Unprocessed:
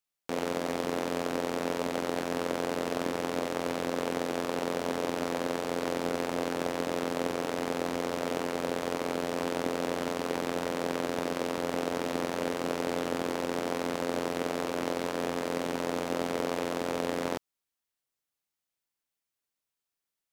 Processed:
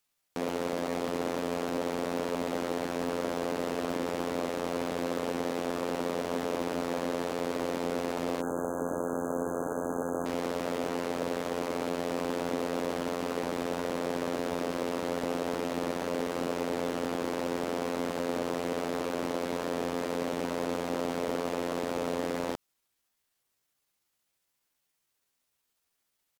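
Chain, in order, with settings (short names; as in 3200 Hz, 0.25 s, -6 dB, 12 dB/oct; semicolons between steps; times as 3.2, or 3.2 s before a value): tempo 0.77×; sine folder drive 5 dB, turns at -12.5 dBFS; limiter -21 dBFS, peak gain reduction 8.5 dB; spectral delete 8.41–10.26, 1700–6100 Hz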